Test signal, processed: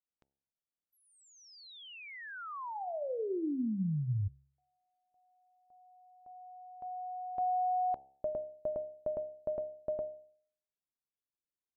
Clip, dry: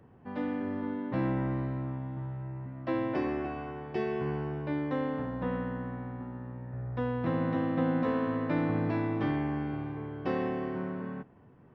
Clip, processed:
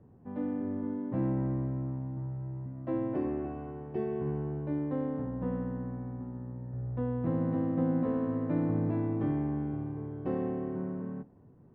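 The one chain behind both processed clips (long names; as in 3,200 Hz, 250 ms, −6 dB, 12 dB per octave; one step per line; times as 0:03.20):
low-pass filter 4,000 Hz 12 dB per octave
tilt shelving filter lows +10 dB, about 1,100 Hz
hum removal 68.13 Hz, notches 13
level −8.5 dB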